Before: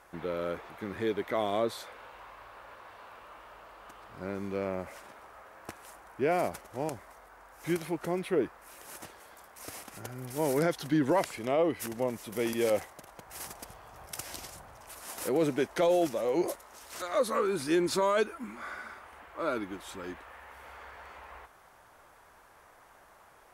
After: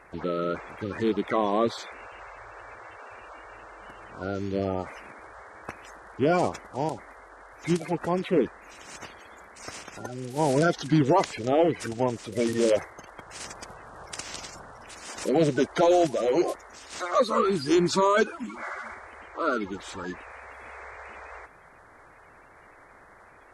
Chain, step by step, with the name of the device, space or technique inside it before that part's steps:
clip after many re-uploads (low-pass filter 8,100 Hz 24 dB per octave; spectral magnitudes quantised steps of 30 dB)
level +6 dB

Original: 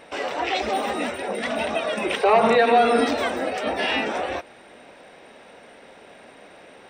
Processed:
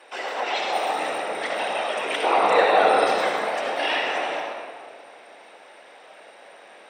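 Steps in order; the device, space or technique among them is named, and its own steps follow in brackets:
whispering ghost (random phases in short frames; high-pass filter 510 Hz 12 dB per octave; convolution reverb RT60 2.1 s, pre-delay 54 ms, DRR −0.5 dB)
level −2 dB

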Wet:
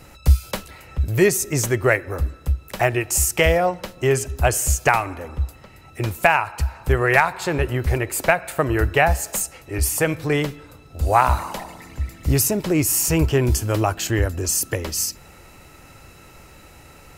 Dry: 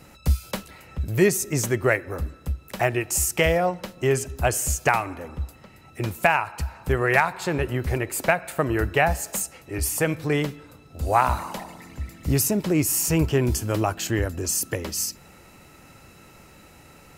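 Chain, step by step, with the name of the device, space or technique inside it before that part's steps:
low shelf boost with a cut just above (low-shelf EQ 65 Hz +7.5 dB; parametric band 200 Hz −5 dB 0.94 octaves)
level +3.5 dB

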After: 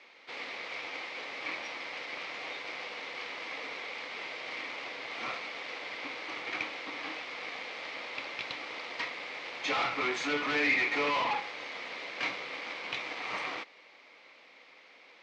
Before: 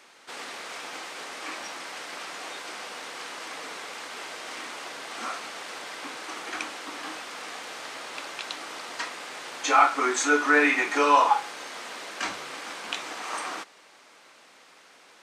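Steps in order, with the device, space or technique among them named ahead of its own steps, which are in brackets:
guitar amplifier (tube saturation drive 29 dB, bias 0.8; bass and treble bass −8 dB, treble +5 dB; loudspeaker in its box 89–4,300 Hz, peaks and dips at 130 Hz +8 dB, 200 Hz +4 dB, 280 Hz +4 dB, 510 Hz +5 dB, 1,500 Hz −5 dB, 2,200 Hz +10 dB)

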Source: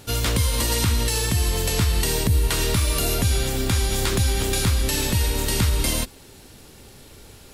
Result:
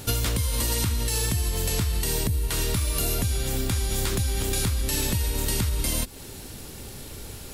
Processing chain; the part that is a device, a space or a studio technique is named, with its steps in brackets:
ASMR close-microphone chain (low-shelf EQ 250 Hz +4 dB; downward compressor 10 to 1, threshold −26 dBFS, peak gain reduction 14.5 dB; high-shelf EQ 7,800 Hz +7 dB)
level +3.5 dB

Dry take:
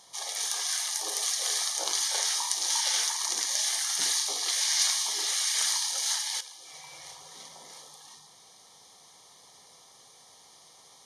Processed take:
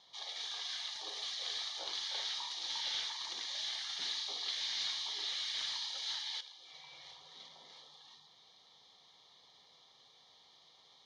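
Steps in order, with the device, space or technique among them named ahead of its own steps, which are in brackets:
overdriven synthesiser ladder filter (soft clipping −23.5 dBFS, distortion −14 dB; transistor ladder low-pass 4,300 Hz, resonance 55%)

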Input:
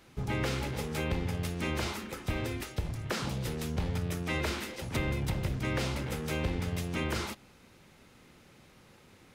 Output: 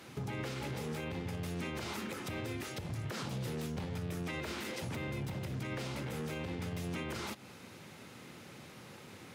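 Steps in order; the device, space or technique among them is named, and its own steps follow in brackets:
podcast mastering chain (high-pass filter 90 Hz 24 dB per octave; de-essing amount 95%; downward compressor 4 to 1, threshold −43 dBFS, peak gain reduction 12.5 dB; brickwall limiter −37 dBFS, peak gain reduction 6.5 dB; level +7 dB; MP3 112 kbit/s 44,100 Hz)

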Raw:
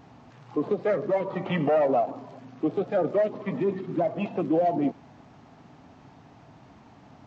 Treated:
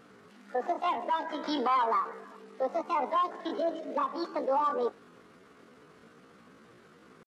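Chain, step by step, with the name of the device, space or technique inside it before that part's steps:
0:00.99–0:01.46: high-pass filter 110 Hz
chipmunk voice (pitch shifter +9 semitones)
level −4.5 dB

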